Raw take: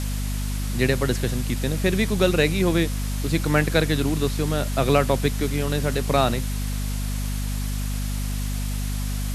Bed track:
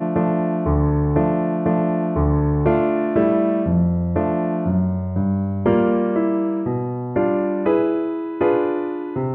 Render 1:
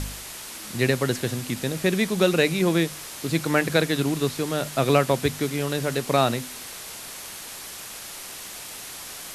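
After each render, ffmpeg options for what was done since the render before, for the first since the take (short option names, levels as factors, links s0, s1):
-af "bandreject=f=50:t=h:w=4,bandreject=f=100:t=h:w=4,bandreject=f=150:t=h:w=4,bandreject=f=200:t=h:w=4,bandreject=f=250:t=h:w=4"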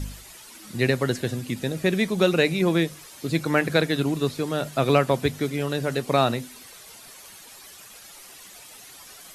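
-af "afftdn=nr=11:nf=-38"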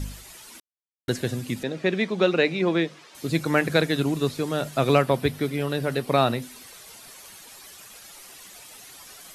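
-filter_complex "[0:a]asettb=1/sr,asplit=3[s0][s1][s2];[s0]atrim=end=1.634[s3];[s1]atrim=start=1.63:end=3.15,asetpts=PTS-STARTPTS,afade=t=in:d=0.004:c=qsin,afade=t=out:st=1.516:d=0.004:c=qsin,highpass=210,lowpass=4100[s4];[s2]atrim=start=3.146[s5];[s3][s4]acrossfade=d=0.004:c1=hsin:c2=qsin[s6];[s6][s5]acrossfade=d=0.004:c1=qsin:c2=hsin,asettb=1/sr,asplit=3[s7][s8][s9];[s7]atrim=end=5.024[s10];[s8]atrim=start=5.02:end=6.42,asetpts=PTS-STARTPTS,afade=t=in:d=0.004:c=qsin,afade=t=out:st=1.396:d=0.004:c=qsin,equalizer=f=6800:t=o:w=0.53:g=-8[s11];[s9]atrim=start=6.416[s12];[s10][s11]acrossfade=d=0.004:c1=hsin:c2=qsin[s13];[s13][s12]acrossfade=d=0.004:c1=qsin:c2=hsin,asplit=3[s14][s15][s16];[s14]atrim=end=0.6,asetpts=PTS-STARTPTS,afade=t=out:st=0.596:d=0.004:c=hsin[s17];[s15]atrim=start=0.6:end=1.08,asetpts=PTS-STARTPTS,volume=0[s18];[s16]atrim=start=1.08,asetpts=PTS-STARTPTS,afade=t=in:d=0.004:c=hsin[s19];[s17][s18][s19]concat=n=3:v=0:a=1"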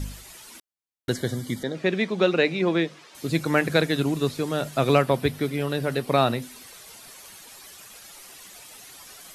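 -filter_complex "[0:a]asettb=1/sr,asplit=3[s0][s1][s2];[s0]atrim=end=1.134[s3];[s1]atrim=start=1.13:end=1.75,asetpts=PTS-STARTPTS,afade=t=in:d=0.004:c=qsin,afade=t=out:st=0.616:d=0.004:c=qsin,asuperstop=centerf=2600:order=20:qfactor=4.8[s4];[s2]atrim=start=1.746[s5];[s3][s4]acrossfade=d=0.004:c1=hsin:c2=qsin[s6];[s6][s5]acrossfade=d=0.004:c1=qsin:c2=hsin"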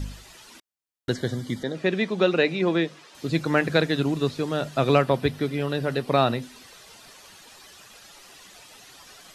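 -filter_complex "[0:a]bandreject=f=2200:w=19,acrossover=split=6700[s0][s1];[s1]acompressor=threshold=0.00126:ratio=4:attack=1:release=60[s2];[s0][s2]amix=inputs=2:normalize=0"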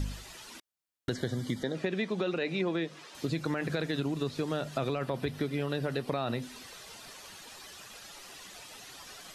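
-af "alimiter=limit=0.188:level=0:latency=1:release=24,acompressor=threshold=0.0398:ratio=6"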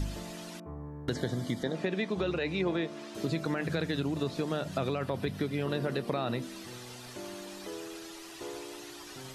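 -filter_complex "[1:a]volume=0.0596[s0];[0:a][s0]amix=inputs=2:normalize=0"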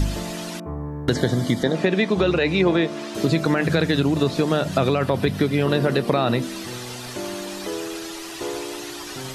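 -af "volume=3.98"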